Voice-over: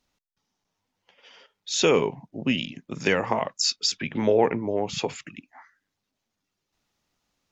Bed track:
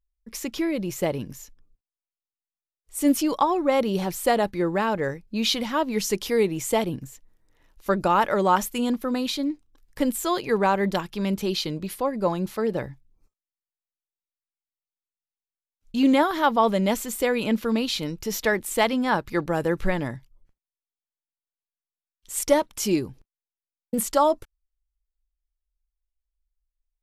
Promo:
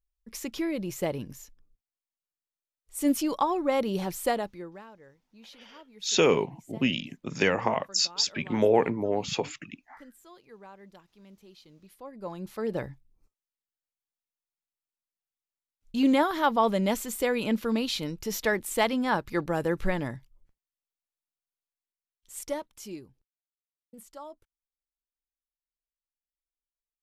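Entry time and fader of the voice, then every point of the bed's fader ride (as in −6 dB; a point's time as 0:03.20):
4.35 s, −1.5 dB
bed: 0:04.27 −4.5 dB
0:04.96 −27.5 dB
0:11.62 −27.5 dB
0:12.77 −3.5 dB
0:21.62 −3.5 dB
0:23.53 −24 dB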